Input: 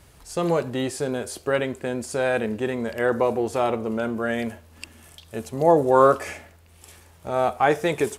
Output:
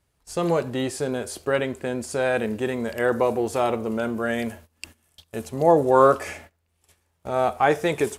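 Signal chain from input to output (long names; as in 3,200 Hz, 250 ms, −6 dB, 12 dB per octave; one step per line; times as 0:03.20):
noise gate −44 dBFS, range −19 dB
0:02.39–0:05.42: high-shelf EQ 6,900 Hz +5.5 dB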